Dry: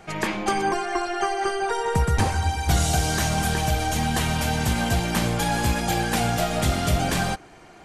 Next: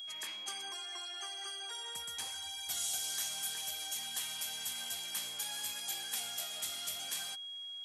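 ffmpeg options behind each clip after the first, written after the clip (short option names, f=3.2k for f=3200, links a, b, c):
-af "aeval=exprs='val(0)+0.0398*sin(2*PI*3300*n/s)':c=same,aderivative,volume=-7.5dB"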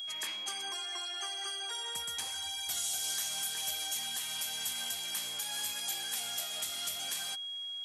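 -af "alimiter=level_in=4.5dB:limit=-24dB:level=0:latency=1:release=196,volume=-4.5dB,volume=4.5dB"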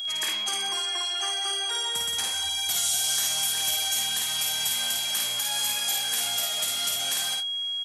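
-af "aecho=1:1:53|78:0.708|0.266,volume=7.5dB"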